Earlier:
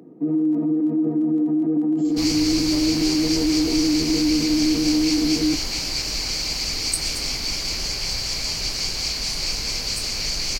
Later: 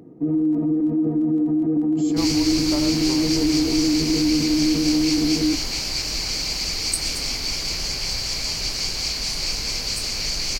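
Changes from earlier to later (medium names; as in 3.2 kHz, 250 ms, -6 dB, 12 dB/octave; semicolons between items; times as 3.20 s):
speech +9.5 dB; first sound: remove high-pass 160 Hz 24 dB/octave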